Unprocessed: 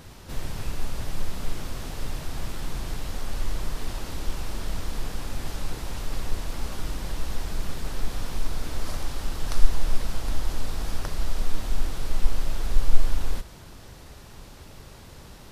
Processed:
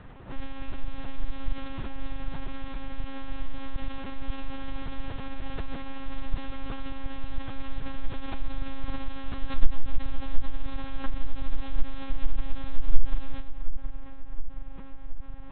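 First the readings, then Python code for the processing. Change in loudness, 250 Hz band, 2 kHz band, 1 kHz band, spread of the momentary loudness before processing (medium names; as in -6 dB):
-5.0 dB, +0.5 dB, -3.0 dB, -2.5 dB, 15 LU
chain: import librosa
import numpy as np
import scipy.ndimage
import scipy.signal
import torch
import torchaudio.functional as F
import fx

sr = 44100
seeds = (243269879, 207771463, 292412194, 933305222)

y = fx.env_lowpass(x, sr, base_hz=1900.0, full_db=-14.0)
y = fx.echo_filtered(y, sr, ms=720, feedback_pct=66, hz=1600.0, wet_db=-10.0)
y = fx.lpc_monotone(y, sr, seeds[0], pitch_hz=270.0, order=10)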